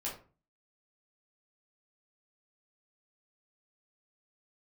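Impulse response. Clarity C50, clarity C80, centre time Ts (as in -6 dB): 7.0 dB, 12.5 dB, 28 ms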